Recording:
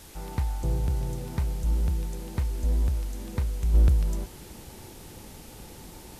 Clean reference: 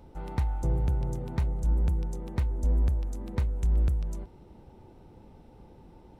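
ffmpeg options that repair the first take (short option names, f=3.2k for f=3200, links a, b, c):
-af "afwtdn=0.0035,asetnsamples=n=441:p=0,asendcmd='3.74 volume volume -6dB',volume=0dB"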